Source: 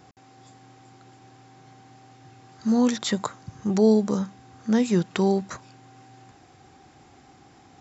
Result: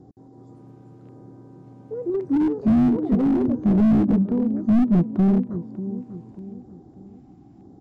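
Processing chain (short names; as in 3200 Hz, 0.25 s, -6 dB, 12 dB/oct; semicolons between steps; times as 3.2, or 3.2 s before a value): treble ducked by the level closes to 570 Hz, closed at -20.5 dBFS; EQ curve 120 Hz 0 dB, 320 Hz +4 dB, 1600 Hz -24 dB; LFO notch square 0.92 Hz 460–2500 Hz; echoes that change speed 0.193 s, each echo +4 st, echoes 3, each echo -6 dB; on a send: feedback echo 0.593 s, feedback 40%, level -13.5 dB; on the sum: slew limiter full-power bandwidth 21 Hz; gain +6 dB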